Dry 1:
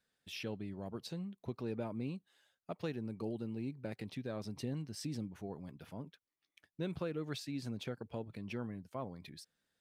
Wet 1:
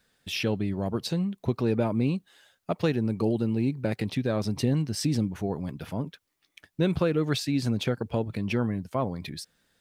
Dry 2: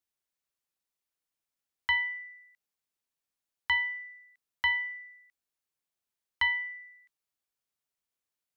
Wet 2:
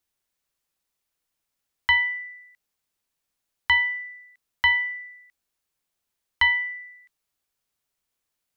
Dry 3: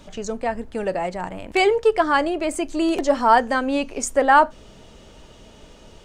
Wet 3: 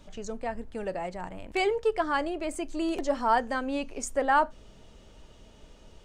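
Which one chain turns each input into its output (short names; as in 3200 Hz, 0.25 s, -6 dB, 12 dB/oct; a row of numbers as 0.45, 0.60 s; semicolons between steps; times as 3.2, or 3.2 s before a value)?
low shelf 72 Hz +7 dB; normalise peaks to -12 dBFS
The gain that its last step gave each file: +14.0, +7.5, -9.0 dB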